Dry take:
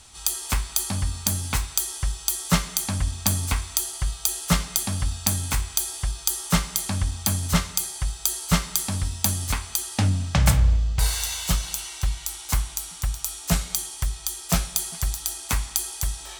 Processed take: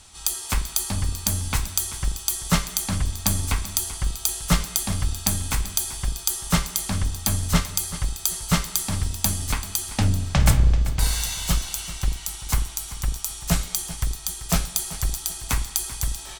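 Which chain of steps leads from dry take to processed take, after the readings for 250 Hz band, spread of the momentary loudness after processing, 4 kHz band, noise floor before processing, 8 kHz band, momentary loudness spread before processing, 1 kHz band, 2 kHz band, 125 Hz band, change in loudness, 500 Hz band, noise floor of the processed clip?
+0.5 dB, 6 LU, 0.0 dB, −40 dBFS, 0.0 dB, 6 LU, 0.0 dB, 0.0 dB, +0.5 dB, +0.5 dB, +0.5 dB, −38 dBFS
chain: sub-octave generator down 2 octaves, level −5 dB
on a send: repeating echo 387 ms, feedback 28%, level −14.5 dB

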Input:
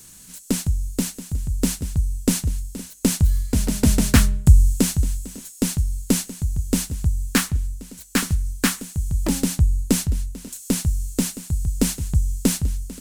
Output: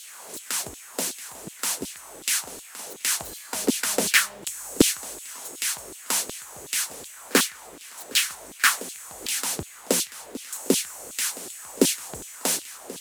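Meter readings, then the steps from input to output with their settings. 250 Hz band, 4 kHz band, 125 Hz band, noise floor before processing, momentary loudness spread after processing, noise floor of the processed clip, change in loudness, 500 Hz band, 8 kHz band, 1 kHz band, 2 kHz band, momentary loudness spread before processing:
−8.0 dB, +3.5 dB, −23.0 dB, −44 dBFS, 15 LU, −45 dBFS, −3.0 dB, +1.5 dB, +1.5 dB, +2.5 dB, +4.5 dB, 10 LU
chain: echo ahead of the sound 41 ms −24 dB
background noise brown −34 dBFS
auto-filter high-pass saw down 2.7 Hz 310–3,600 Hz
level +1 dB

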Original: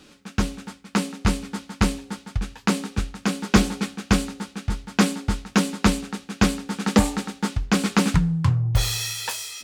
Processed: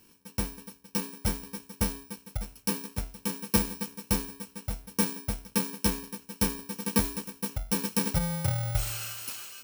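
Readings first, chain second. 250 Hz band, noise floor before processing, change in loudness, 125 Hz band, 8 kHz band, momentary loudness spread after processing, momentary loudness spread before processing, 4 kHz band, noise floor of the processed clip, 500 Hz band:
−11.0 dB, −51 dBFS, −7.0 dB, −9.5 dB, −3.0 dB, 11 LU, 10 LU, −8.5 dB, −60 dBFS, −8.0 dB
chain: samples in bit-reversed order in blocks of 64 samples
level −8.5 dB

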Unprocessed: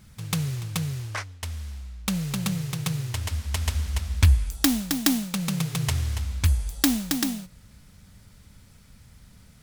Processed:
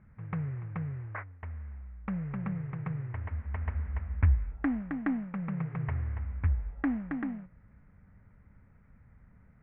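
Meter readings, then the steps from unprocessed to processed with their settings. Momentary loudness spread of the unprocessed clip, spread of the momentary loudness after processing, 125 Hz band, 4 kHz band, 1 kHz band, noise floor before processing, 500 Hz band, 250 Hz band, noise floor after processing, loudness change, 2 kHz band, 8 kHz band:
12 LU, 12 LU, −6.5 dB, below −35 dB, −6.5 dB, −53 dBFS, −6.5 dB, −6.5 dB, −60 dBFS, −8.0 dB, −8.5 dB, below −40 dB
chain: Butterworth low-pass 2,100 Hz 48 dB per octave
level −6.5 dB

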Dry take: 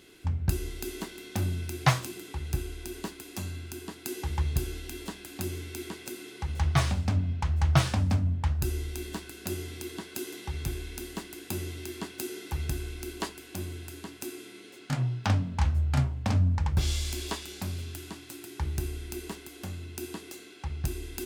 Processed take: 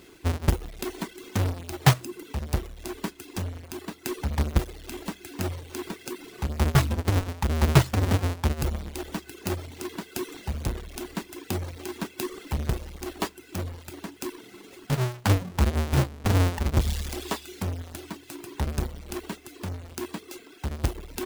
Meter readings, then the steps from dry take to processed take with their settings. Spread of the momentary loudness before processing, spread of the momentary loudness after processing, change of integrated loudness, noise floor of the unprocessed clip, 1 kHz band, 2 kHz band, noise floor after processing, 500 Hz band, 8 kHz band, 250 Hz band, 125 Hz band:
14 LU, 14 LU, +3.0 dB, −49 dBFS, +3.5 dB, +3.5 dB, −50 dBFS, +6.0 dB, +1.5 dB, +4.5 dB, +2.5 dB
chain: each half-wave held at its own peak
reverb reduction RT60 0.76 s

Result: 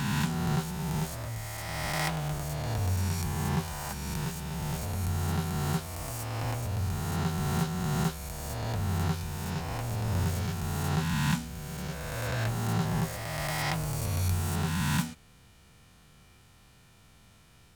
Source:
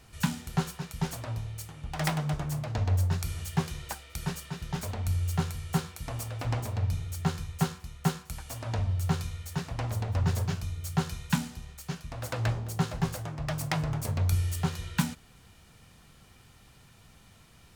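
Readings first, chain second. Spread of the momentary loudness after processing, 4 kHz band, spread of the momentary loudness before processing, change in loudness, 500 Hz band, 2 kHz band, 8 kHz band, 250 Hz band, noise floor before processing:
7 LU, +2.0 dB, 10 LU, +0.5 dB, +1.5 dB, +3.0 dB, +2.5 dB, +1.5 dB, −57 dBFS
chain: peak hold with a rise ahead of every peak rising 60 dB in 2.46 s
level −5 dB

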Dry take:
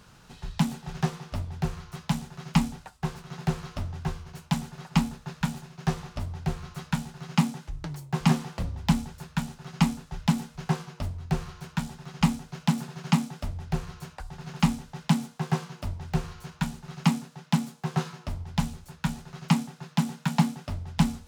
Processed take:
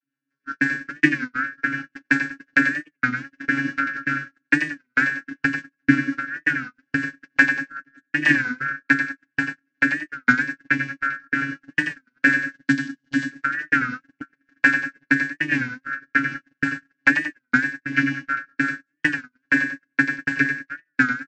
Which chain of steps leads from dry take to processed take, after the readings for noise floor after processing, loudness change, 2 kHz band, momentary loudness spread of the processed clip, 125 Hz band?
−79 dBFS, +7.5 dB, +22.5 dB, 8 LU, −8.5 dB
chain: band-splitting scrambler in four parts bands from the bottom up 2143
rotating-speaker cabinet horn 5.5 Hz
channel vocoder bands 32, saw 138 Hz
low shelf with overshoot 410 Hz +8.5 dB, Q 3
gain on a spectral selection 0:12.49–0:13.30, 300–2,800 Hz −10 dB
repeating echo 96 ms, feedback 47%, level −8 dB
dynamic equaliser 2,300 Hz, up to +4 dB, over −46 dBFS, Q 6.3
speech leveller within 5 dB 2 s
noise gate −34 dBFS, range −41 dB
comb filter 3.8 ms, depth 69%
wow of a warped record 33 1/3 rpm, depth 160 cents
level +6.5 dB

